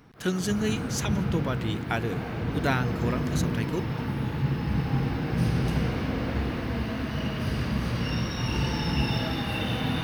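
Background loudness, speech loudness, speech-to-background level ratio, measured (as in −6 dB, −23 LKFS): −29.0 LKFS, −31.0 LKFS, −2.0 dB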